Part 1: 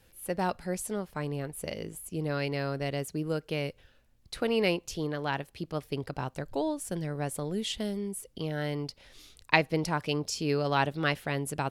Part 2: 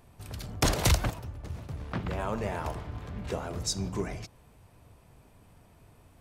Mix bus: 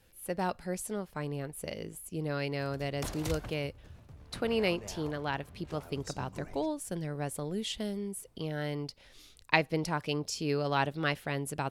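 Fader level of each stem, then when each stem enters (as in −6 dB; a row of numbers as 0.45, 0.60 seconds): −2.5, −13.5 decibels; 0.00, 2.40 seconds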